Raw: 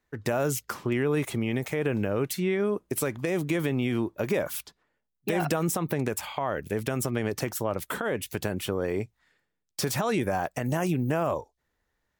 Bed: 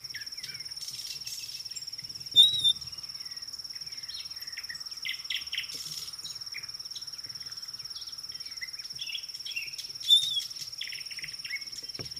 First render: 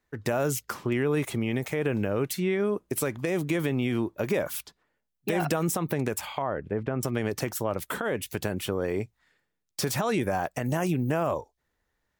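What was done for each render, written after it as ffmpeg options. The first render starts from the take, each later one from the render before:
-filter_complex "[0:a]asettb=1/sr,asplit=3[s0][s1][s2];[s0]atrim=end=6.424[s3];[s1]atrim=start=6.42:end=7.03,asetpts=PTS-STARTPTS,afade=t=in:d=0.004:c=qsin,afade=t=out:st=0.606:d=0.004:c=qsin,lowpass=1500[s4];[s2]atrim=start=7.026[s5];[s3][s4]acrossfade=d=0.004:c1=hsin:c2=qsin[s6];[s6][s5]acrossfade=d=0.004:c1=qsin:c2=hsin"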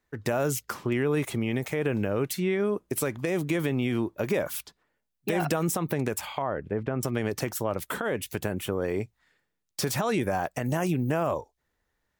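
-filter_complex "[0:a]asettb=1/sr,asplit=3[s0][s1][s2];[s0]atrim=end=8.394[s3];[s1]atrim=start=8.39:end=8.82,asetpts=PTS-STARTPTS,afade=t=in:d=0.004:c=qsin,afade=t=out:st=0.426:d=0.004:c=qsin,equalizer=f=4600:t=o:w=0.86:g=-6.5[s4];[s2]atrim=start=8.816[s5];[s3][s4]acrossfade=d=0.004:c1=hsin:c2=qsin[s6];[s6][s5]acrossfade=d=0.004:c1=qsin:c2=hsin"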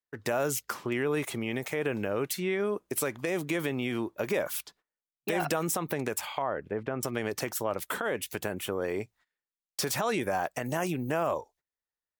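-af "lowshelf=f=240:g=-10.5,agate=range=0.1:threshold=0.00126:ratio=16:detection=peak"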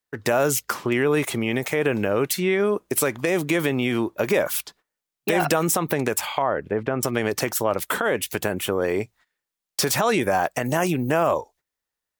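-af "volume=2.66"

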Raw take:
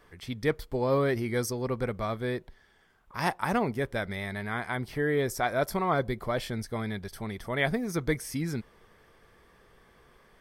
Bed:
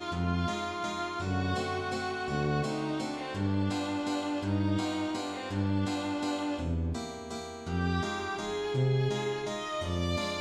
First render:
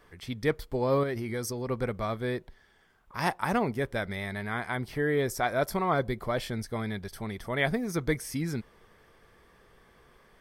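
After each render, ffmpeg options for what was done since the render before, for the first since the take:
-filter_complex "[0:a]asettb=1/sr,asplit=3[s0][s1][s2];[s0]atrim=end=1.034[s3];[s1]atrim=start=1.03:end=1.69,asetpts=PTS-STARTPTS,afade=t=in:d=0.004:c=qsin,afade=t=out:st=0.656:d=0.004:c=qsin,acompressor=threshold=0.0316:ratio=2.5:attack=3.2:release=140:knee=1:detection=peak[s4];[s2]atrim=start=1.686[s5];[s3][s4]acrossfade=d=0.004:c1=hsin:c2=qsin[s6];[s6][s5]acrossfade=d=0.004:c1=qsin:c2=hsin"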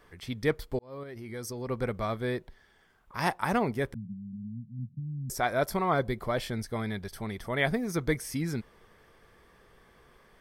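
-filter_complex "[0:a]asettb=1/sr,asplit=3[s0][s1][s2];[s0]atrim=end=3.944[s3];[s1]atrim=start=3.94:end=5.3,asetpts=PTS-STARTPTS,afade=t=in:d=0.004:c=qsin,afade=t=out:st=1.356:d=0.004:c=qsin,asuperpass=centerf=160:order=12:qfactor=1.2[s4];[s2]atrim=start=5.296[s5];[s3][s4]acrossfade=d=0.004:c1=hsin:c2=qsin[s6];[s6][s5]acrossfade=d=0.004:c1=qsin:c2=hsin,asplit=2[s7][s8];[s7]atrim=end=0.79,asetpts=PTS-STARTPTS,afade=t=out:st=0.786:d=0.004:c=hsin[s9];[s8]atrim=start=0.79,asetpts=PTS-STARTPTS,afade=t=in:d=1.1[s10];[s9][s10]concat=n=2:v=0:a=1"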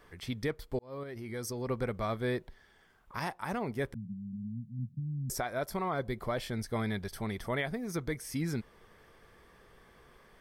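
-af "alimiter=limit=0.0708:level=0:latency=1:release=428"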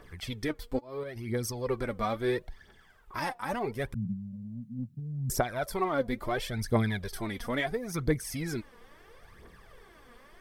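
-filter_complex "[0:a]asplit=2[s0][s1];[s1]asoftclip=type=tanh:threshold=0.0188,volume=0.282[s2];[s0][s2]amix=inputs=2:normalize=0,aphaser=in_gain=1:out_gain=1:delay=4.3:decay=0.62:speed=0.74:type=triangular"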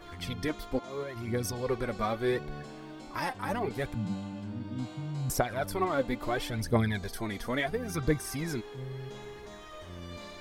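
-filter_complex "[1:a]volume=0.237[s0];[0:a][s0]amix=inputs=2:normalize=0"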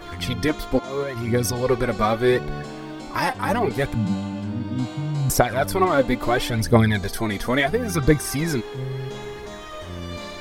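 -af "volume=3.35"

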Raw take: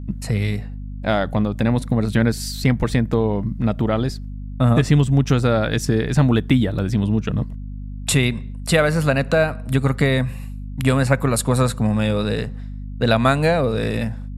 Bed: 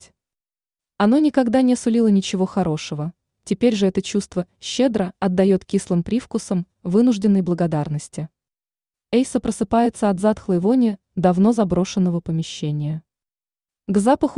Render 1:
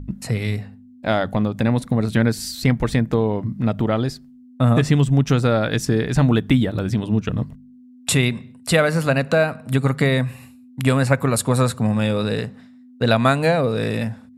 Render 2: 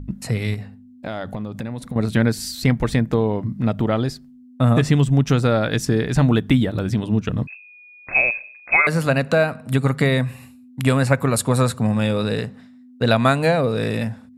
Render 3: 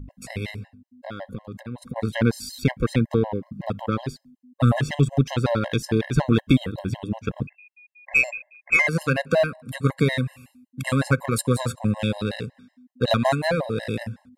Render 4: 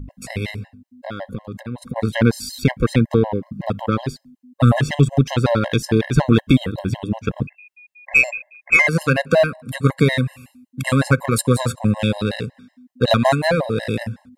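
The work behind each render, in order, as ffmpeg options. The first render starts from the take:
-af "bandreject=f=50:t=h:w=4,bandreject=f=100:t=h:w=4,bandreject=f=150:t=h:w=4,bandreject=f=200:t=h:w=4"
-filter_complex "[0:a]asettb=1/sr,asplit=3[s0][s1][s2];[s0]atrim=end=0.544[s3];[s1]atrim=start=0.54:end=1.96,asetpts=PTS-STARTPTS,afade=t=in:d=0.004:c=qsin,afade=t=out:st=1.416:d=0.004:c=qsin,acompressor=threshold=0.0631:ratio=6:attack=3.2:release=140:knee=1:detection=peak[s4];[s2]atrim=start=1.956[s5];[s3][s4]acrossfade=d=0.004:c1=hsin:c2=qsin[s6];[s6][s5]acrossfade=d=0.004:c1=qsin:c2=hsin,asettb=1/sr,asplit=3[s7][s8][s9];[s7]atrim=end=7.474[s10];[s8]atrim=start=7.47:end=8.87,asetpts=PTS-STARTPTS,afade=t=in:d=0.004:c=qsin,afade=t=out:st=1.396:d=0.004:c=qsin,lowpass=f=2300:t=q:w=0.5098,lowpass=f=2300:t=q:w=0.6013,lowpass=f=2300:t=q:w=0.9,lowpass=f=2300:t=q:w=2.563,afreqshift=-2700[s11];[s9]atrim=start=8.866[s12];[s10][s11]acrossfade=d=0.004:c1=hsin:c2=qsin[s13];[s13][s12]acrossfade=d=0.004:c1=qsin:c2=hsin"
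-af "aeval=exprs='0.708*(cos(1*acos(clip(val(0)/0.708,-1,1)))-cos(1*PI/2))+0.0316*(cos(7*acos(clip(val(0)/0.708,-1,1)))-cos(7*PI/2))':c=same,afftfilt=real='re*gt(sin(2*PI*5.4*pts/sr)*(1-2*mod(floor(b*sr/1024/540),2)),0)':imag='im*gt(sin(2*PI*5.4*pts/sr)*(1-2*mod(floor(b*sr/1024/540),2)),0)':win_size=1024:overlap=0.75"
-af "volume=1.78,alimiter=limit=0.794:level=0:latency=1"

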